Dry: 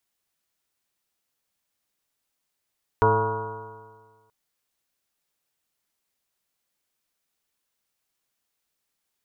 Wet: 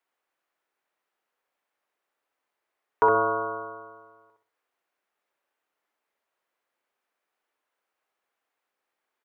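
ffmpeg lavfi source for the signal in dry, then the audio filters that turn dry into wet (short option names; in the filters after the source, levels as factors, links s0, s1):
-f lavfi -i "aevalsrc='0.0794*pow(10,-3*t/1.6)*sin(2*PI*107.21*t)+0.0251*pow(10,-3*t/1.6)*sin(2*PI*215.71*t)+0.0266*pow(10,-3*t/1.6)*sin(2*PI*326.73*t)+0.119*pow(10,-3*t/1.6)*sin(2*PI*441.48*t)+0.0211*pow(10,-3*t/1.6)*sin(2*PI*561.11*t)+0.0316*pow(10,-3*t/1.6)*sin(2*PI*686.67*t)+0.0224*pow(10,-3*t/1.6)*sin(2*PI*819.12*t)+0.133*pow(10,-3*t/1.6)*sin(2*PI*959.33*t)+0.0447*pow(10,-3*t/1.6)*sin(2*PI*1108.08*t)+0.0188*pow(10,-3*t/1.6)*sin(2*PI*1266.04*t)+0.0398*pow(10,-3*t/1.6)*sin(2*PI*1433.82*t)':d=1.28:s=44100"
-filter_complex "[0:a]acrossover=split=330 2400:gain=0.0794 1 0.141[s0][s1][s2];[s0][s1][s2]amix=inputs=3:normalize=0,asplit=2[s3][s4];[s4]alimiter=limit=0.0841:level=0:latency=1:release=395,volume=0.794[s5];[s3][s5]amix=inputs=2:normalize=0,asplit=2[s6][s7];[s7]adelay=64,lowpass=f=1400:p=1,volume=0.708,asplit=2[s8][s9];[s9]adelay=64,lowpass=f=1400:p=1,volume=0.35,asplit=2[s10][s11];[s11]adelay=64,lowpass=f=1400:p=1,volume=0.35,asplit=2[s12][s13];[s13]adelay=64,lowpass=f=1400:p=1,volume=0.35,asplit=2[s14][s15];[s15]adelay=64,lowpass=f=1400:p=1,volume=0.35[s16];[s6][s8][s10][s12][s14][s16]amix=inputs=6:normalize=0"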